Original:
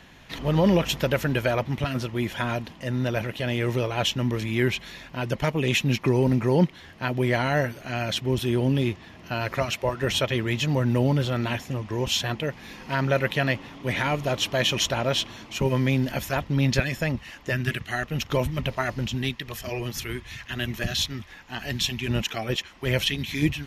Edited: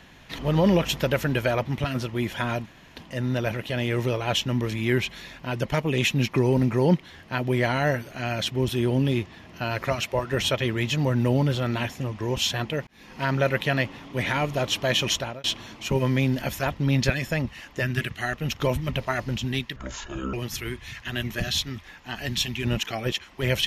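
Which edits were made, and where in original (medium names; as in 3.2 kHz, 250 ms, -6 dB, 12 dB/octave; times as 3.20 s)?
2.66 s: insert room tone 0.30 s
12.57–12.92 s: fade in
14.81–15.14 s: fade out
19.46–19.77 s: speed 54%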